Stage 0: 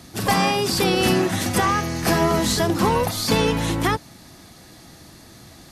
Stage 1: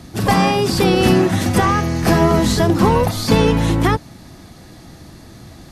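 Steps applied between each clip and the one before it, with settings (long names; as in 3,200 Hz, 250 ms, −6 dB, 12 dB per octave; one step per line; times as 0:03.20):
spectral tilt −1.5 dB per octave
level +3.5 dB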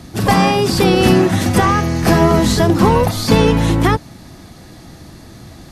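hard clipping −3.5 dBFS, distortion −44 dB
level +2 dB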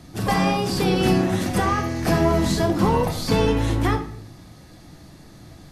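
rectangular room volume 120 cubic metres, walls mixed, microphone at 0.47 metres
level −9 dB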